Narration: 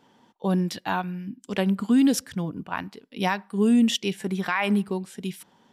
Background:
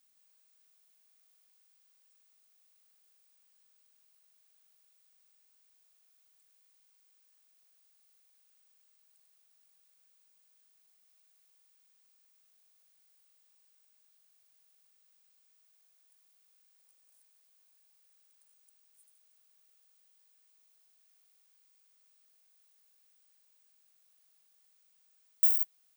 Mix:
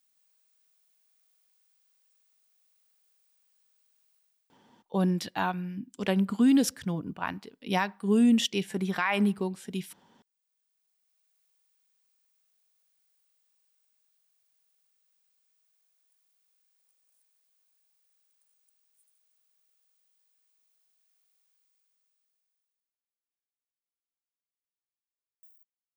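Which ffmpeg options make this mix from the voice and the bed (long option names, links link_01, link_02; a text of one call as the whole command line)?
ffmpeg -i stem1.wav -i stem2.wav -filter_complex "[0:a]adelay=4500,volume=-2.5dB[link_01];[1:a]volume=13.5dB,afade=type=out:start_time=4.15:duration=0.46:silence=0.125893,afade=type=in:start_time=10.15:duration=1.3:silence=0.177828,afade=type=out:start_time=21.49:duration=1.47:silence=0.0354813[link_02];[link_01][link_02]amix=inputs=2:normalize=0" out.wav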